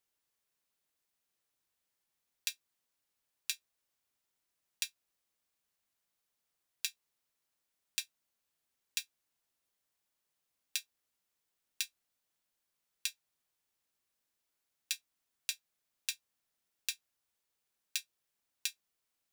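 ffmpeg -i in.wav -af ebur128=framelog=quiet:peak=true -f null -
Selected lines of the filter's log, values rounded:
Integrated loudness:
  I:         -40.8 LUFS
  Threshold: -51.2 LUFS
Loudness range:
  LRA:         3.0 LU
  Threshold: -65.3 LUFS
  LRA low:   -46.2 LUFS
  LRA high:  -43.2 LUFS
True peak:
  Peak:      -11.1 dBFS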